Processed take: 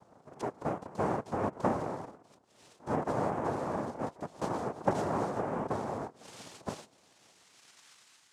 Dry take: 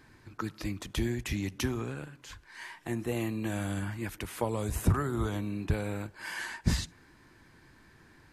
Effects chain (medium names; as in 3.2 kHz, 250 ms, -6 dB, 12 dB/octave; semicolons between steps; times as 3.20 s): pre-echo 71 ms -21.5 dB; band-pass sweep 280 Hz -> 2.8 kHz, 6.02–8.29 s; noise-vocoded speech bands 2; trim +5.5 dB